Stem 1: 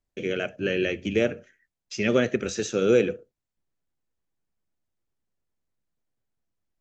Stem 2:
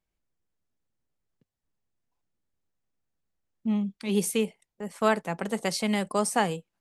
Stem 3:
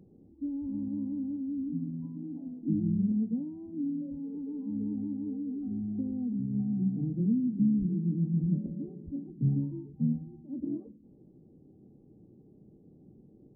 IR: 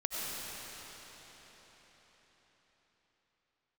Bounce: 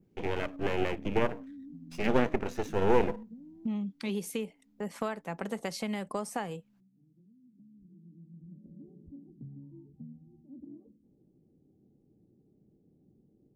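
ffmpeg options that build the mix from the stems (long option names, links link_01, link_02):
-filter_complex "[0:a]lowpass=frequency=1500:poles=1,aeval=exprs='max(val(0),0)':channel_layout=same,volume=0.5dB[link_01];[1:a]equalizer=frequency=9100:width_type=o:width=0.53:gain=-7,acompressor=threshold=-33dB:ratio=6,volume=2dB,asplit=2[link_02][link_03];[2:a]acompressor=threshold=-35dB:ratio=6,volume=-9dB[link_04];[link_03]apad=whole_len=597760[link_05];[link_04][link_05]sidechaincompress=threshold=-54dB:ratio=6:attack=16:release=1380[link_06];[link_01][link_02][link_06]amix=inputs=3:normalize=0,adynamicequalizer=threshold=0.00158:dfrequency=4300:dqfactor=1.2:tfrequency=4300:tqfactor=1.2:attack=5:release=100:ratio=0.375:range=2.5:mode=cutabove:tftype=bell"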